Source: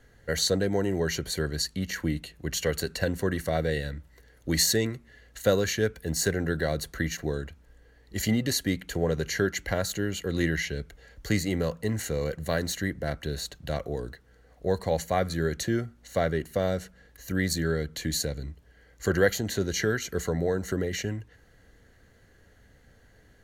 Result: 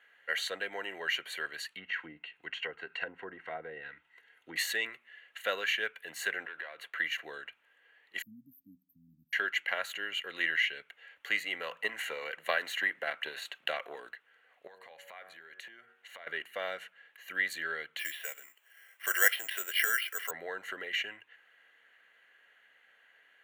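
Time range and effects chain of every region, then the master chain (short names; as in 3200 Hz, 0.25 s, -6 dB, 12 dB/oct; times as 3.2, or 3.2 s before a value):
1.74–4.56 notch comb 580 Hz + treble ducked by the level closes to 810 Hz, closed at -24 dBFS + low shelf 160 Hz +8.5 dB
6.45–6.98 tone controls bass -8 dB, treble -9 dB + sample leveller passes 1 + compressor 12:1, threshold -34 dBFS
8.22–9.33 brick-wall FIR band-stop 290–12000 Hz + bell 13000 Hz -7.5 dB 1 oct
11.61–14.09 HPF 160 Hz + transient shaper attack +9 dB, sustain +5 dB
14.67–16.27 de-hum 93.66 Hz, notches 20 + compressor 10:1, threshold -38 dBFS
17.99–20.31 weighting filter A + careless resampling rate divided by 6×, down filtered, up zero stuff
whole clip: HPF 1100 Hz 12 dB/oct; resonant high shelf 3800 Hz -11 dB, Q 3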